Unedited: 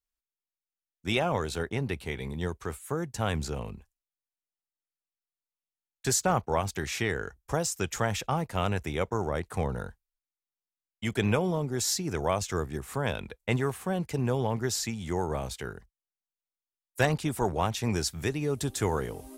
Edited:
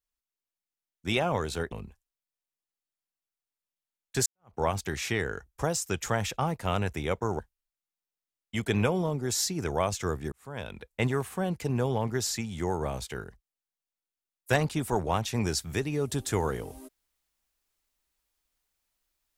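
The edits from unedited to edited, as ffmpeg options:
-filter_complex "[0:a]asplit=5[a][b][c][d][e];[a]atrim=end=1.722[f];[b]atrim=start=3.618:end=6.16,asetpts=PTS-STARTPTS,afade=t=out:st=2.538:d=0.004:c=hsin[g];[c]atrim=start=6.16:end=9.292,asetpts=PTS-STARTPTS,afade=t=in:d=0.3:c=exp[h];[d]atrim=start=9.878:end=12.81,asetpts=PTS-STARTPTS,afade=t=out:st=2.928:d=0.004:c=hsin[i];[e]atrim=start=12.81,asetpts=PTS-STARTPTS,afade=t=in:d=0.64[j];[g][h]concat=n=2:v=0:a=1[k];[f][k]acrossfade=d=0.004:c1=hsin:c2=hsin[l];[i][j]concat=n=2:v=0:a=1[m];[l][m]acrossfade=d=0.004:c1=hsin:c2=hsin"

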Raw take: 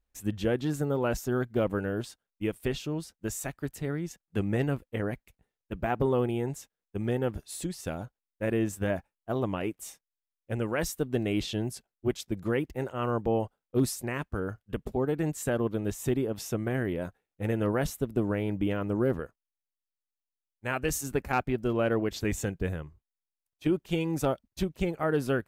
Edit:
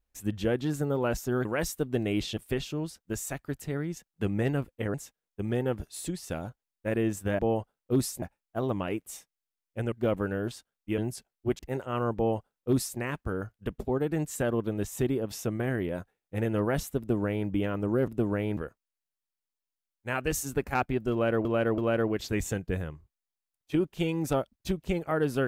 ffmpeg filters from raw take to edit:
-filter_complex "[0:a]asplit=13[a][b][c][d][e][f][g][h][i][j][k][l][m];[a]atrim=end=1.452[n];[b]atrim=start=10.648:end=11.572[o];[c]atrim=start=2.508:end=5.082[p];[d]atrim=start=6.498:end=8.952[q];[e]atrim=start=13.228:end=14.062[r];[f]atrim=start=8.948:end=10.652[s];[g]atrim=start=1.448:end=2.512[t];[h]atrim=start=11.568:end=12.182[u];[i]atrim=start=12.658:end=19.152[v];[j]atrim=start=18.058:end=18.552[w];[k]atrim=start=19.148:end=22.032[x];[l]atrim=start=21.698:end=22.032[y];[m]atrim=start=21.698[z];[n][o]acrossfade=d=0.004:c1=hsin:c2=hsin[aa];[aa][p]acrossfade=d=0.004:c1=hsin:c2=hsin[ab];[ab][q]acrossfade=d=0.004:c1=hsin:c2=hsin[ac];[ac][r]acrossfade=d=0.004:c1=hsin:c2=hsin[ad];[ad][s]acrossfade=d=0.004:c1=hsin:c2=hsin[ae];[ae][t]acrossfade=d=0.004:c1=hsin:c2=hsin[af];[af][u]acrossfade=d=0.004:c1=hsin:c2=hsin[ag];[ag][v]acrossfade=d=0.004:c1=hsin:c2=hsin[ah];[ah][w]acrossfade=d=0.004:c1=hsin:c2=hsin[ai];[ai][x]acrossfade=d=0.004:c1=hsin:c2=hsin[aj];[aj][y]acrossfade=d=0.004:c1=hsin:c2=hsin[ak];[ak][z]acrossfade=d=0.004:c1=hsin:c2=hsin"

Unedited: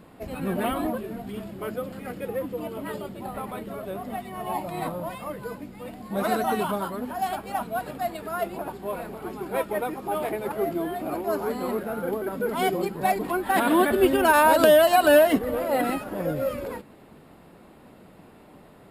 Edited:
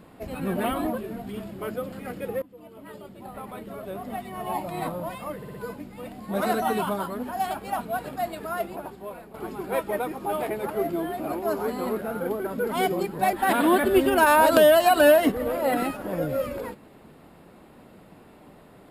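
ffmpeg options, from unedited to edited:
-filter_complex "[0:a]asplit=7[a][b][c][d][e][f][g];[a]atrim=end=2.42,asetpts=PTS-STARTPTS,afade=t=out:st=2.416:d=0.004:c=hsin:silence=0.1[h];[b]atrim=start=2.42:end=5.422,asetpts=PTS-STARTPTS,afade=t=in:d=1.84:silence=0.1[i];[c]atrim=start=5.358:end=5.422[j];[d]atrim=start=5.358:end=5.422[k];[e]atrim=start=5.358:end=9.16,asetpts=PTS-STARTPTS,afade=t=out:st=2.942:d=0.86:silence=0.266073[l];[f]atrim=start=9.16:end=13.152,asetpts=PTS-STARTPTS,afade=t=in:d=0.004:c=hsin:silence=0.266073[m];[g]atrim=start=13.398[n];[h][i]concat=n=2:v=0:a=1[o];[o][j]acrossfade=d=0.004:c1=hsin:c2=hsin[p];[p][k]acrossfade=d=0.004:c1=hsin:c2=hsin[q];[l][m]concat=n=2:v=0:a=1[r];[q][r]acrossfade=d=0.004:c1=hsin:c2=hsin[s];[s][n]acrossfade=d=0.004:c1=hsin:c2=hsin"

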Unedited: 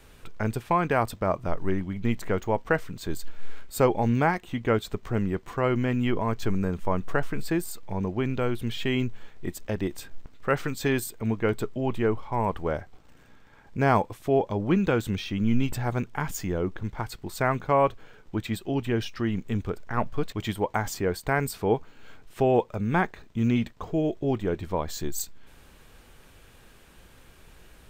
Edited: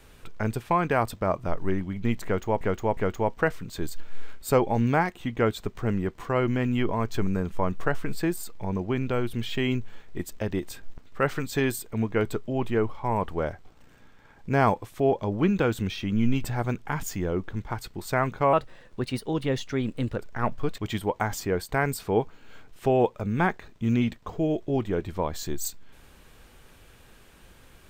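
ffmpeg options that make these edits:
-filter_complex "[0:a]asplit=5[a][b][c][d][e];[a]atrim=end=2.612[f];[b]atrim=start=2.248:end=2.612[g];[c]atrim=start=2.248:end=17.814[h];[d]atrim=start=17.81:end=19.72,asetpts=PTS-STARTPTS,asetrate=51156,aresample=44100[i];[e]atrim=start=19.716[j];[f][g]acrossfade=d=0.004:c1=hsin:c2=hsin[k];[k][h]acrossfade=d=0.004:c1=hsin:c2=hsin[l];[l][i]acrossfade=d=0.004:c1=hsin:c2=hsin[m];[m][j]acrossfade=d=0.004:c1=hsin:c2=hsin"

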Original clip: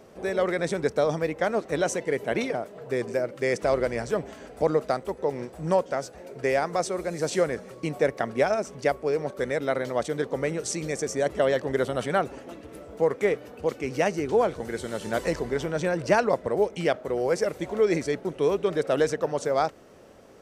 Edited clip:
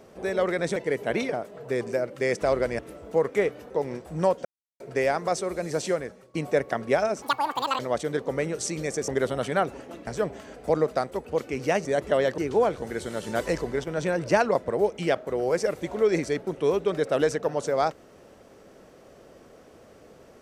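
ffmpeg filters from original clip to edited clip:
-filter_complex "[0:a]asplit=16[a][b][c][d][e][f][g][h][i][j][k][l][m][n][o][p];[a]atrim=end=0.762[q];[b]atrim=start=1.968:end=4.002[r];[c]atrim=start=12.648:end=13.562[s];[d]atrim=start=5.178:end=5.93,asetpts=PTS-STARTPTS,afade=t=out:st=0.748:d=0.004:c=hsin[t];[e]atrim=start=5.93:end=6.28,asetpts=PTS-STARTPTS,volume=0[u];[f]atrim=start=6.28:end=7.82,asetpts=PTS-STARTPTS,afade=t=in:d=0.004:c=hsin,afade=t=out:st=0.93:d=0.61:silence=0.158489[v];[g]atrim=start=7.82:end=8.704,asetpts=PTS-STARTPTS,afade=t=in:d=0.004:c=hsin:silence=0.158489[w];[h]atrim=start=8.7:end=9.84,asetpts=PTS-STARTPTS,asetrate=88200,aresample=44100[x];[i]atrim=start=9.836:end=11.132[y];[j]atrim=start=11.658:end=12.652[z];[k]atrim=start=3.998:end=5.182[aa];[l]atrim=start=13.558:end=14.162[ab];[m]atrim=start=11.128:end=11.662[ac];[n]atrim=start=14.158:end=15.62,asetpts=PTS-STARTPTS,afade=t=out:st=1.202:d=0.26:c=log:silence=0.281838[ad];[o]atrim=start=15.62:end=15.65,asetpts=PTS-STARTPTS,volume=-11dB[ae];[p]atrim=start=15.65,asetpts=PTS-STARTPTS,afade=t=in:d=0.26:c=log:silence=0.281838[af];[q][r]acrossfade=d=0.004:c1=hsin:c2=hsin[ag];[ag][s]acrossfade=d=0.004:c1=hsin:c2=hsin[ah];[t][u][v][w]concat=n=4:v=0:a=1[ai];[ah][ai]acrossfade=d=0.004:c1=hsin:c2=hsin[aj];[aj][x]acrossfade=d=0.004:c1=hsin:c2=hsin[ak];[ak][y]acrossfade=d=0.004:c1=hsin:c2=hsin[al];[al][z]acrossfade=d=0.004:c1=hsin:c2=hsin[am];[am][aa]acrossfade=d=0.004:c1=hsin:c2=hsin[an];[an][ab]acrossfade=d=0.004:c1=hsin:c2=hsin[ao];[ao][ac]acrossfade=d=0.004:c1=hsin:c2=hsin[ap];[ad][ae][af]concat=n=3:v=0:a=1[aq];[ap][aq]acrossfade=d=0.004:c1=hsin:c2=hsin"

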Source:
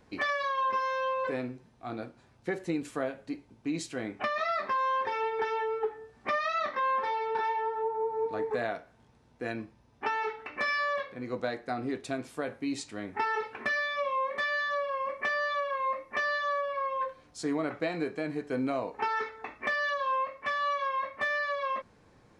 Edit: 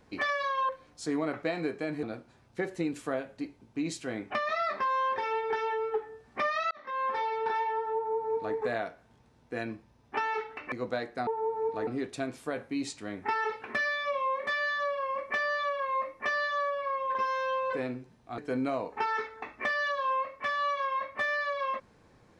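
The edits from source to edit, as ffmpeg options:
-filter_complex "[0:a]asplit=9[a][b][c][d][e][f][g][h][i];[a]atrim=end=0.692[j];[b]atrim=start=17.058:end=18.402[k];[c]atrim=start=1.918:end=6.6,asetpts=PTS-STARTPTS,afade=t=out:st=4.678:d=0.004:c=hsin[l];[d]atrim=start=6.6:end=10.612,asetpts=PTS-STARTPTS,afade=t=in:d=0.44[m];[e]atrim=start=11.228:end=11.782[n];[f]atrim=start=7.838:end=8.442[o];[g]atrim=start=11.778:end=17.062[p];[h]atrim=start=0.688:end=1.922[q];[i]atrim=start=18.398[r];[j][k]acrossfade=d=0.004:c1=hsin:c2=hsin[s];[l][m]concat=n=2:v=0:a=1[t];[s][t]acrossfade=d=0.004:c1=hsin:c2=hsin[u];[u][n]acrossfade=d=0.004:c1=hsin:c2=hsin[v];[v][o]acrossfade=d=0.004:c1=hsin:c2=hsin[w];[w][p]acrossfade=d=0.004:c1=hsin:c2=hsin[x];[x][q]acrossfade=d=0.004:c1=hsin:c2=hsin[y];[y][r]acrossfade=d=0.004:c1=hsin:c2=hsin"

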